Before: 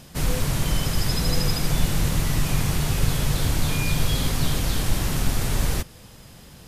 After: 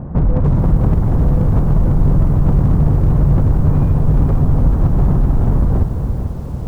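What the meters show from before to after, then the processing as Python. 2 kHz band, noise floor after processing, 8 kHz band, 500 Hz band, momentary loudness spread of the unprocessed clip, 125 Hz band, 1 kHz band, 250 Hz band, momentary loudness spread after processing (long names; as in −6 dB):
can't be measured, −24 dBFS, below −20 dB, +7.5 dB, 2 LU, +11.5 dB, +4.0 dB, +10.5 dB, 3 LU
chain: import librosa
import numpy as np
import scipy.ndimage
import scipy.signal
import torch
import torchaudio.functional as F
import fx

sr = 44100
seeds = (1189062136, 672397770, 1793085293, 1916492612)

p1 = scipy.signal.sosfilt(scipy.signal.butter(4, 1100.0, 'lowpass', fs=sr, output='sos'), x)
p2 = fx.low_shelf(p1, sr, hz=370.0, db=5.0)
p3 = fx.over_compress(p2, sr, threshold_db=-25.0, ratio=-1.0)
p4 = p2 + F.gain(torch.from_numpy(p3), 3.0).numpy()
p5 = fx.highpass(p4, sr, hz=45.0, slope=6)
p6 = fx.low_shelf(p5, sr, hz=130.0, db=8.0)
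p7 = p6 + fx.echo_feedback(p6, sr, ms=283, feedback_pct=53, wet_db=-12.5, dry=0)
p8 = np.clip(p7, -10.0 ** (-8.0 / 20.0), 10.0 ** (-8.0 / 20.0))
y = fx.echo_crushed(p8, sr, ms=444, feedback_pct=35, bits=7, wet_db=-9)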